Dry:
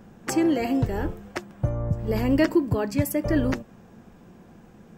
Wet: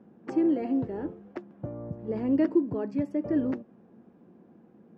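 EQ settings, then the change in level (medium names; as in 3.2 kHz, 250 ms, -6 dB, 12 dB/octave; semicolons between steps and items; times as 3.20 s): band-pass filter 280 Hz, Q 1.3; distance through air 110 m; tilt EQ +2.5 dB/octave; +2.5 dB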